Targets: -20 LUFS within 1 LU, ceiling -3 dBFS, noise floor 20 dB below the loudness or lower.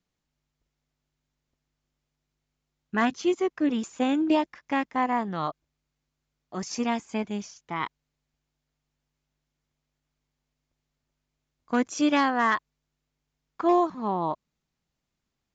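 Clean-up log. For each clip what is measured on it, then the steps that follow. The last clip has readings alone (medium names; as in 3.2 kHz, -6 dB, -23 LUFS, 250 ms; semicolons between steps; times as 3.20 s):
loudness -27.0 LUFS; peak level -13.5 dBFS; loudness target -20.0 LUFS
-> trim +7 dB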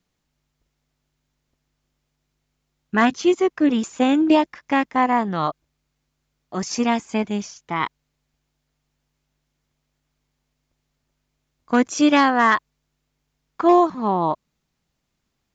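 loudness -20.0 LUFS; peak level -6.5 dBFS; noise floor -76 dBFS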